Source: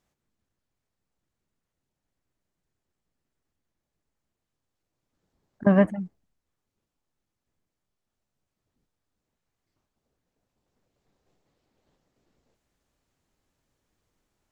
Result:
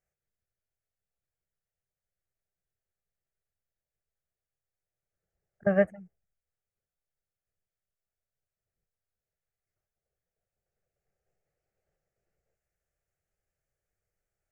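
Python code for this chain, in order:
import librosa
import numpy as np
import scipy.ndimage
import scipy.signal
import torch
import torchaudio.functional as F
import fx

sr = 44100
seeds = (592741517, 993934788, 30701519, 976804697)

y = fx.fixed_phaser(x, sr, hz=1000.0, stages=6)
y = fx.upward_expand(y, sr, threshold_db=-34.0, expansion=1.5)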